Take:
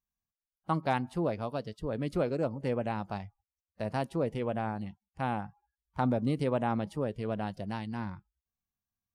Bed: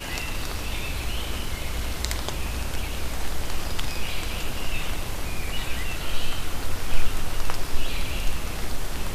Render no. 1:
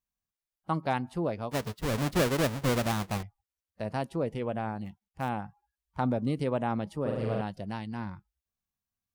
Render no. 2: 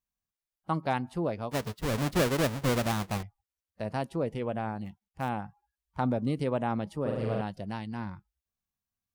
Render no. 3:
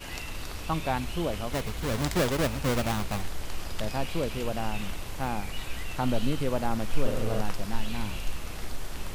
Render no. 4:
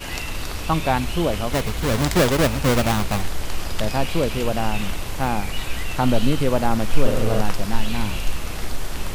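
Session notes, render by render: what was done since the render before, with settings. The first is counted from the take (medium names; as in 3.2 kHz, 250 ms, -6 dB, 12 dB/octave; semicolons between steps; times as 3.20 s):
1.51–3.23 s: square wave that keeps the level; 4.84–5.29 s: dead-time distortion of 0.05 ms; 7.01–7.41 s: flutter echo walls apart 7.5 m, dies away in 1.3 s
no audible change
add bed -7 dB
trim +8.5 dB; peak limiter -3 dBFS, peak gain reduction 1.5 dB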